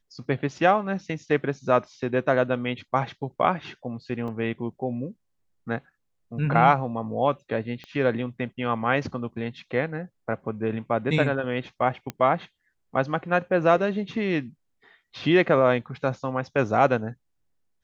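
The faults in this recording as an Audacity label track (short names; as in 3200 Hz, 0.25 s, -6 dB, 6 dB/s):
4.280000	4.280000	gap 3.6 ms
7.840000	7.840000	pop -26 dBFS
12.100000	12.100000	pop -16 dBFS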